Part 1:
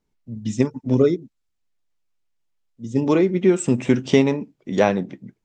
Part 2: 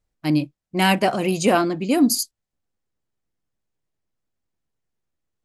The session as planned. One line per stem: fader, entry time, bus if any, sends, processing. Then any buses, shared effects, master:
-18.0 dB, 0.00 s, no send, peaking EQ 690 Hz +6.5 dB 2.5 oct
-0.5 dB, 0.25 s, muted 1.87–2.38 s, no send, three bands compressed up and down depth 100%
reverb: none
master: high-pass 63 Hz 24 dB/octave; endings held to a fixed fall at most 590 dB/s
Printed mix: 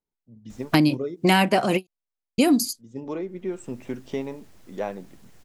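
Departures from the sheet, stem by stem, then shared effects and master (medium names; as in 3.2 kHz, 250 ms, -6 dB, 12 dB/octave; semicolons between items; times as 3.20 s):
stem 2: entry 0.25 s -> 0.50 s; master: missing high-pass 63 Hz 24 dB/octave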